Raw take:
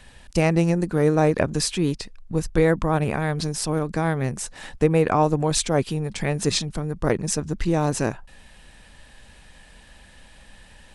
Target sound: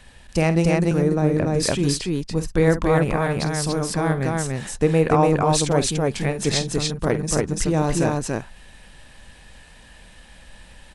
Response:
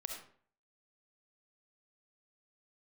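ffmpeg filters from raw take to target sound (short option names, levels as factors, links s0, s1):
-filter_complex "[0:a]aecho=1:1:49.56|288.6:0.251|0.794,asettb=1/sr,asplit=3[s0][s1][s2];[s0]atrim=end=0.914[s3];[s1]atrim=start=0.91:end=1.63,asetpts=PTS-STARTPTS,afade=t=in:d=0.004:c=qsin,afade=t=out:st=0.716:d=0.004:c=qsin,acrossover=split=420[s4][s5];[s5]acompressor=threshold=0.0355:ratio=2.5[s6];[s4][s6]amix=inputs=2:normalize=0[s7];[s2]atrim=start=1.626[s8];[s3][s7]acrossfade=d=0.004:c1=hsin:c2=qsin[s9];[s9][s8]acrossfade=d=0.004:c1=qsin:c2=hsin"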